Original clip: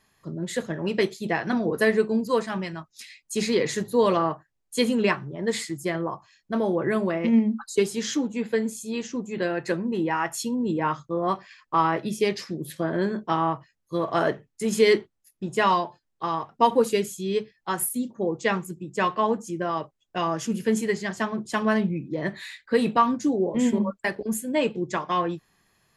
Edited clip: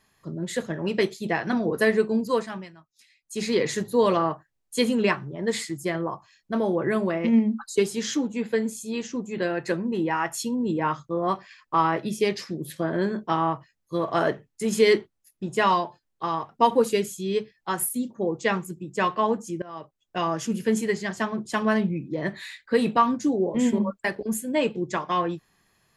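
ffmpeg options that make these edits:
ffmpeg -i in.wav -filter_complex "[0:a]asplit=4[link_01][link_02][link_03][link_04];[link_01]atrim=end=2.73,asetpts=PTS-STARTPTS,afade=type=out:start_time=2.31:duration=0.42:silence=0.177828[link_05];[link_02]atrim=start=2.73:end=3.15,asetpts=PTS-STARTPTS,volume=-15dB[link_06];[link_03]atrim=start=3.15:end=19.62,asetpts=PTS-STARTPTS,afade=type=in:duration=0.42:silence=0.177828,afade=type=out:start_time=16.466:duration=0.004:curve=hsin:silence=0.1[link_07];[link_04]atrim=start=19.62,asetpts=PTS-STARTPTS,afade=type=in:duration=0.55:silence=0.1[link_08];[link_05][link_06][link_07][link_08]concat=n=4:v=0:a=1" out.wav

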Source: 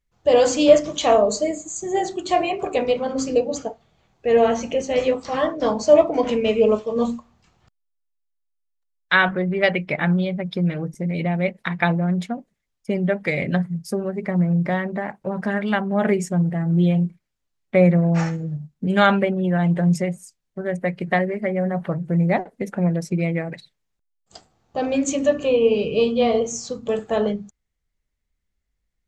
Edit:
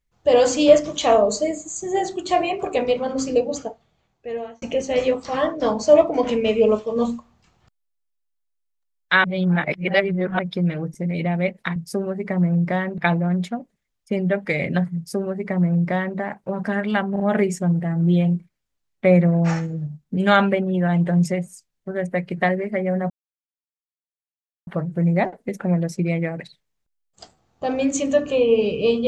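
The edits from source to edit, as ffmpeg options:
ffmpeg -i in.wav -filter_complex "[0:a]asplit=9[link_01][link_02][link_03][link_04][link_05][link_06][link_07][link_08][link_09];[link_01]atrim=end=4.62,asetpts=PTS-STARTPTS,afade=type=out:start_time=3.48:duration=1.14[link_10];[link_02]atrim=start=4.62:end=9.242,asetpts=PTS-STARTPTS,afade=type=in:duration=0.004:curve=hsin[link_11];[link_03]atrim=start=9.238:end=10.392,asetpts=PTS-STARTPTS,areverse[link_12];[link_04]atrim=start=10.388:end=11.762[link_13];[link_05]atrim=start=13.738:end=14.962[link_14];[link_06]atrim=start=11.758:end=15.942[link_15];[link_07]atrim=start=15.898:end=15.942[link_16];[link_08]atrim=start=15.898:end=21.8,asetpts=PTS-STARTPTS,afade=type=out:start_time=5.898:duration=0.004:curve=hsin,apad=pad_dur=1.57[link_17];[link_09]atrim=start=21.8,asetpts=PTS-STARTPTS,afade=type=in:duration=0.004:curve=hsin[link_18];[link_10][link_11]concat=n=2:v=0:a=1[link_19];[link_19][link_12]acrossfade=duration=0.004:curve1=hsin:curve2=hsin[link_20];[link_20][link_13]acrossfade=duration=0.004:curve1=hsin:curve2=hsin[link_21];[link_21][link_14]acrossfade=duration=0.004:curve1=hsin:curve2=hsin[link_22];[link_22][link_15]acrossfade=duration=0.004:curve1=hsin:curve2=hsin[link_23];[link_23][link_16]acrossfade=duration=0.004:curve1=hsin:curve2=hsin[link_24];[link_17][link_18]concat=n=2:v=0:a=1[link_25];[link_24][link_25]acrossfade=duration=0.004:curve1=hsin:curve2=hsin" out.wav

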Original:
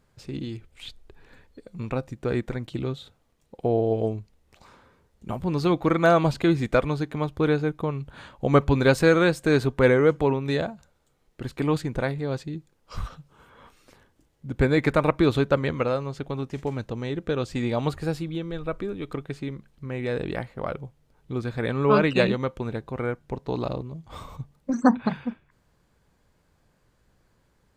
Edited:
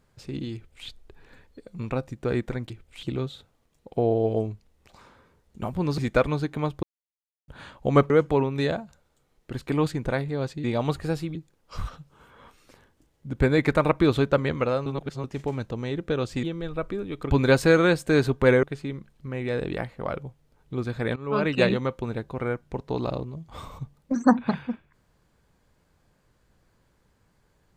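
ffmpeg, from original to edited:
ffmpeg -i in.wav -filter_complex "[0:a]asplit=15[link_01][link_02][link_03][link_04][link_05][link_06][link_07][link_08][link_09][link_10][link_11][link_12][link_13][link_14][link_15];[link_01]atrim=end=2.702[link_16];[link_02]atrim=start=0.538:end=0.872[link_17];[link_03]atrim=start=2.698:end=5.652[link_18];[link_04]atrim=start=6.558:end=7.41,asetpts=PTS-STARTPTS,afade=type=out:start_time=0.848:duration=0.004:curve=hsin[link_19];[link_05]atrim=start=7.41:end=8.06,asetpts=PTS-STARTPTS,volume=0[link_20];[link_06]atrim=start=8.06:end=8.682,asetpts=PTS-STARTPTS,afade=type=in:duration=0.004:curve=hsin[link_21];[link_07]atrim=start=9.998:end=12.542[link_22];[link_08]atrim=start=17.618:end=18.332[link_23];[link_09]atrim=start=12.538:end=16.052[link_24];[link_10]atrim=start=16.048:end=16.432,asetpts=PTS-STARTPTS,areverse[link_25];[link_11]atrim=start=16.428:end=17.622[link_26];[link_12]atrim=start=18.328:end=19.212[link_27];[link_13]atrim=start=8.678:end=10.002[link_28];[link_14]atrim=start=19.208:end=21.74,asetpts=PTS-STARTPTS,afade=type=out:start_time=2.528:duration=0.004:curve=hsin:silence=0.11885[link_29];[link_15]atrim=start=21.74,asetpts=PTS-STARTPTS,afade=type=in:duration=0.48:silence=0.11885[link_30];[link_16][link_17]acrossfade=duration=0.004:curve1=hsin:curve2=hsin[link_31];[link_31][link_18]acrossfade=duration=0.004:curve1=hsin:curve2=hsin[link_32];[link_19][link_20][link_21]concat=n=3:v=0:a=1[link_33];[link_32][link_33]acrossfade=duration=0.004:curve1=hsin:curve2=hsin[link_34];[link_34][link_22]acrossfade=duration=0.004:curve1=hsin:curve2=hsin[link_35];[link_35][link_23]acrossfade=duration=0.004:curve1=hsin:curve2=hsin[link_36];[link_36][link_24]acrossfade=duration=0.004:curve1=hsin:curve2=hsin[link_37];[link_37][link_25]acrossfade=duration=0.004:curve1=hsin:curve2=hsin[link_38];[link_38][link_26]acrossfade=duration=0.004:curve1=hsin:curve2=hsin[link_39];[link_39][link_27]acrossfade=duration=0.004:curve1=hsin:curve2=hsin[link_40];[link_40][link_28]acrossfade=duration=0.004:curve1=hsin:curve2=hsin[link_41];[link_29][link_30]concat=n=2:v=0:a=1[link_42];[link_41][link_42]acrossfade=duration=0.004:curve1=hsin:curve2=hsin" out.wav

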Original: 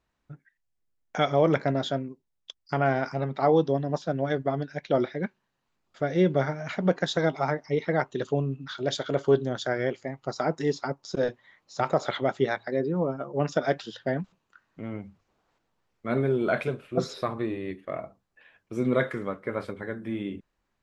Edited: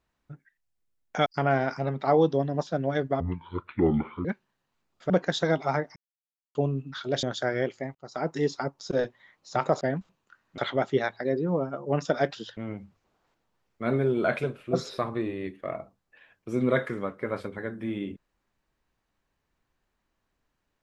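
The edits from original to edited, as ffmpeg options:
ffmpeg -i in.wav -filter_complex "[0:a]asplit=12[link_01][link_02][link_03][link_04][link_05][link_06][link_07][link_08][link_09][link_10][link_11][link_12];[link_01]atrim=end=1.262[link_13];[link_02]atrim=start=2.608:end=4.554[link_14];[link_03]atrim=start=4.55:end=5.19,asetpts=PTS-STARTPTS,asetrate=26901,aresample=44100[link_15];[link_04]atrim=start=5.186:end=6.042[link_16];[link_05]atrim=start=6.838:end=7.7,asetpts=PTS-STARTPTS,afade=type=out:start_time=0.858:duration=0.004:curve=hsin[link_17];[link_06]atrim=start=7.7:end=8.29,asetpts=PTS-STARTPTS,volume=0[link_18];[link_07]atrim=start=8.29:end=8.972,asetpts=PTS-STARTPTS,afade=type=in:duration=0.004:curve=hsin[link_19];[link_08]atrim=start=9.468:end=10.19,asetpts=PTS-STARTPTS,afade=type=out:start_time=0.718:duration=0.004:curve=hsin[link_20];[link_09]atrim=start=10.19:end=12.052,asetpts=PTS-STARTPTS,afade=type=in:duration=0.4[link_21];[link_10]atrim=start=14.038:end=14.812[link_22];[link_11]atrim=start=12.048:end=14.042[link_23];[link_12]atrim=start=14.808[link_24];[link_13][link_14]acrossfade=duration=0.004:curve1=hsin:curve2=hsin[link_25];[link_25][link_15]acrossfade=duration=0.004:curve1=hsin:curve2=hsin[link_26];[link_26][link_16]acrossfade=duration=0.004:curve1=hsin:curve2=hsin[link_27];[link_17][link_18][link_19]concat=n=3:v=0:a=1[link_28];[link_27][link_28]acrossfade=duration=0.004:curve1=hsin:curve2=hsin[link_29];[link_20][link_21]concat=n=2:v=0:a=1[link_30];[link_29][link_30]acrossfade=duration=0.004:curve1=hsin:curve2=hsin[link_31];[link_31][link_22]acrossfade=duration=0.004:curve1=hsin:curve2=hsin[link_32];[link_32][link_23]acrossfade=duration=0.004:curve1=hsin:curve2=hsin[link_33];[link_33][link_24]acrossfade=duration=0.004:curve1=hsin:curve2=hsin" out.wav

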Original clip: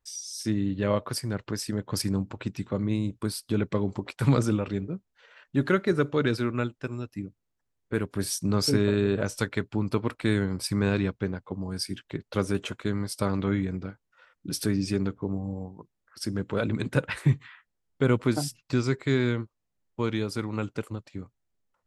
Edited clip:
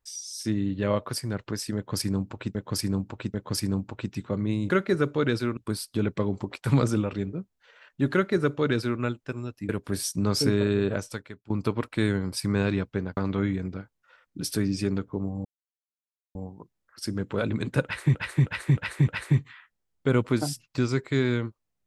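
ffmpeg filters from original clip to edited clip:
ffmpeg -i in.wav -filter_complex "[0:a]asplit=13[link_01][link_02][link_03][link_04][link_05][link_06][link_07][link_08][link_09][link_10][link_11][link_12][link_13];[link_01]atrim=end=2.552[link_14];[link_02]atrim=start=1.758:end=2.552[link_15];[link_03]atrim=start=1.758:end=3.122[link_16];[link_04]atrim=start=5.678:end=6.552[link_17];[link_05]atrim=start=3.118:end=7.242[link_18];[link_06]atrim=start=7.958:end=9.77,asetpts=PTS-STARTPTS,afade=type=out:start_time=1.232:duration=0.58:curve=qua:silence=0.11885[link_19];[link_07]atrim=start=9.77:end=11.442,asetpts=PTS-STARTPTS,afade=type=in:duration=0.004:curve=hsin:silence=0.11885[link_20];[link_08]atrim=start=13.258:end=15.54,asetpts=PTS-STARTPTS,afade=type=out:start_time=2.278:duration=0.004:curve=hsin,apad=pad_dur=0.9[link_21];[link_09]atrim=start=15.54:end=17.342,asetpts=PTS-STARTPTS,afade=type=in:duration=0.004:curve=hsin[link_22];[link_10]atrim=start=17.028:end=17.342[link_23];[link_11]atrim=start=17.028:end=17.342[link_24];[link_12]atrim=start=17.028:end=17.342[link_25];[link_13]atrim=start=17.028[link_26];[link_14][link_15]acrossfade=duration=0.004:curve1=hsin:curve2=hsin[link_27];[link_27][link_16]acrossfade=duration=0.004:curve1=hsin:curve2=hsin[link_28];[link_28][link_17]acrossfade=duration=0.004:curve1=hsin:curve2=hsin[link_29];[link_29][link_18]acrossfade=duration=0.004:curve1=hsin:curve2=hsin[link_30];[link_19][link_20]concat=n=2:v=0:a=1[link_31];[link_30][link_31]acrossfade=duration=0.004:curve1=hsin:curve2=hsin[link_32];[link_21][link_22]concat=n=2:v=0:a=1[link_33];[link_32][link_33]acrossfade=duration=0.004:curve1=hsin:curve2=hsin[link_34];[link_34][link_23]acrossfade=duration=0.004:curve1=hsin:curve2=hsin[link_35];[link_35][link_24]acrossfade=duration=0.004:curve1=hsin:curve2=hsin[link_36];[link_36][link_25]acrossfade=duration=0.004:curve1=hsin:curve2=hsin[link_37];[link_37][link_26]acrossfade=duration=0.004:curve1=hsin:curve2=hsin" out.wav

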